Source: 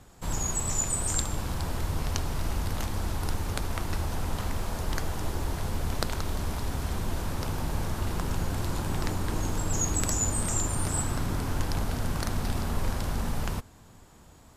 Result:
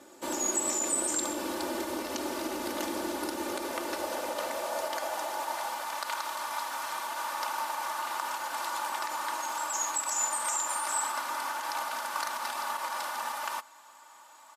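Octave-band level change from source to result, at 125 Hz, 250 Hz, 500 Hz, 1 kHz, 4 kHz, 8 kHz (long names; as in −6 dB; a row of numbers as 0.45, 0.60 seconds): below −30 dB, −4.5 dB, +1.5 dB, +6.0 dB, +1.0 dB, 0.0 dB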